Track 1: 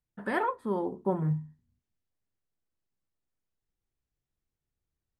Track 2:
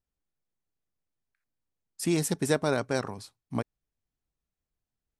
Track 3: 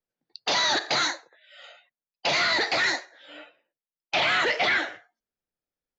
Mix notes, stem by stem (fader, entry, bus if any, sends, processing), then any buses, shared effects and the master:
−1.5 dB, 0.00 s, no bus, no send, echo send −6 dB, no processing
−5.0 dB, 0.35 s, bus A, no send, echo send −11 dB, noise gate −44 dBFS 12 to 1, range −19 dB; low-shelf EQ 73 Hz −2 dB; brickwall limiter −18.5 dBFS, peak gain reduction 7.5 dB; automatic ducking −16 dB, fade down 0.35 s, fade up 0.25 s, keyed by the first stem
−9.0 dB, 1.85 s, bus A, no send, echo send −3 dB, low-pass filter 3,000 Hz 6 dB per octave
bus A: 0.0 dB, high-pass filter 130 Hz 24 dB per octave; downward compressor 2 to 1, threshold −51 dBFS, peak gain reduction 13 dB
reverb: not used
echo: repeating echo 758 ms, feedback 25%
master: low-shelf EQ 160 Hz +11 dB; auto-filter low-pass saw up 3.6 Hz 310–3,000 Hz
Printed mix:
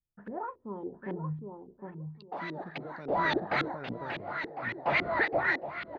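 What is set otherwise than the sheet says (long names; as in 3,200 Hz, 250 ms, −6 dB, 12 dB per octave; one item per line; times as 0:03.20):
stem 1 −1.5 dB → −13.0 dB
stem 3 −9.0 dB → −1.5 dB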